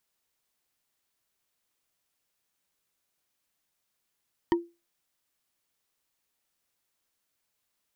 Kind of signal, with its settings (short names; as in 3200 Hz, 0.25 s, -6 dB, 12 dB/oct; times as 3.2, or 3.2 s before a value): wood hit, lowest mode 342 Hz, decay 0.26 s, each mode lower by 5 dB, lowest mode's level -17 dB